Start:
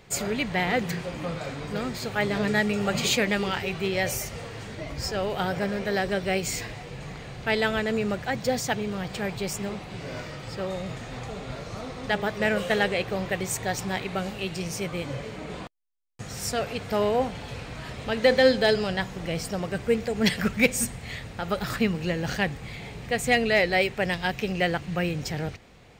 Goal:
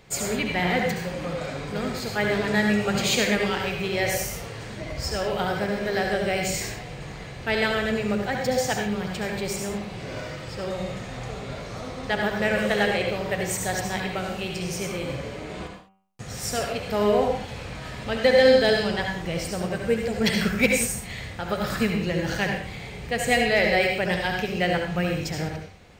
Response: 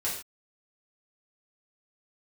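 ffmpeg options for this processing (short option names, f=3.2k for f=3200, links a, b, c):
-filter_complex "[0:a]bandreject=f=96.39:t=h:w=4,bandreject=f=192.78:t=h:w=4,bandreject=f=289.17:t=h:w=4,bandreject=f=385.56:t=h:w=4,bandreject=f=481.95:t=h:w=4,bandreject=f=578.34:t=h:w=4,bandreject=f=674.73:t=h:w=4,bandreject=f=771.12:t=h:w=4,bandreject=f=867.51:t=h:w=4,bandreject=f=963.9:t=h:w=4,bandreject=f=1.06029k:t=h:w=4,bandreject=f=1.15668k:t=h:w=4,bandreject=f=1.25307k:t=h:w=4,bandreject=f=1.34946k:t=h:w=4,bandreject=f=1.44585k:t=h:w=4,bandreject=f=1.54224k:t=h:w=4,bandreject=f=1.63863k:t=h:w=4,bandreject=f=1.73502k:t=h:w=4,bandreject=f=1.83141k:t=h:w=4,bandreject=f=1.9278k:t=h:w=4,bandreject=f=2.02419k:t=h:w=4,bandreject=f=2.12058k:t=h:w=4,bandreject=f=2.21697k:t=h:w=4,bandreject=f=2.31336k:t=h:w=4,bandreject=f=2.40975k:t=h:w=4,bandreject=f=2.50614k:t=h:w=4,bandreject=f=2.60253k:t=h:w=4,bandreject=f=2.69892k:t=h:w=4,bandreject=f=2.79531k:t=h:w=4,bandreject=f=2.8917k:t=h:w=4,bandreject=f=2.98809k:t=h:w=4,bandreject=f=3.08448k:t=h:w=4,asplit=2[a][b];[1:a]atrim=start_sample=2205,asetrate=48510,aresample=44100,adelay=67[c];[b][c]afir=irnorm=-1:irlink=0,volume=-7dB[d];[a][d]amix=inputs=2:normalize=0"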